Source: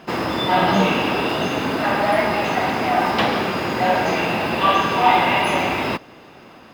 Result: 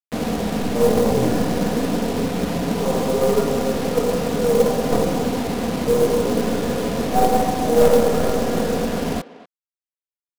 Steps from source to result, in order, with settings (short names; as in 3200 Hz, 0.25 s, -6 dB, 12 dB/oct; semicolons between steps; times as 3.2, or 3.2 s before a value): tracing distortion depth 0.17 ms; LPF 1100 Hz 12 dB/oct; comb 2.7 ms, depth 61%; bit-crush 5-bit; wide varispeed 0.648×; short-mantissa float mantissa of 2-bit; speakerphone echo 0.24 s, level -16 dB